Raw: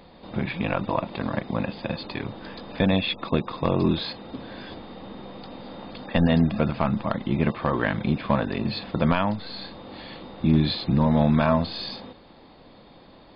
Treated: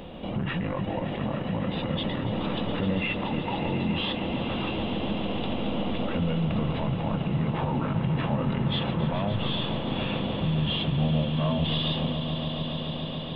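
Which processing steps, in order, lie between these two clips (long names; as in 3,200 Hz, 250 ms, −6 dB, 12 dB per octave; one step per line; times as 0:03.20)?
parametric band 2,100 Hz −8 dB 0.44 octaves
formants moved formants −4 semitones
brickwall limiter −30.5 dBFS, peak gain reduction 19.5 dB
on a send: echo that builds up and dies away 141 ms, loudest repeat 5, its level −12 dB
on the sum: level +9 dB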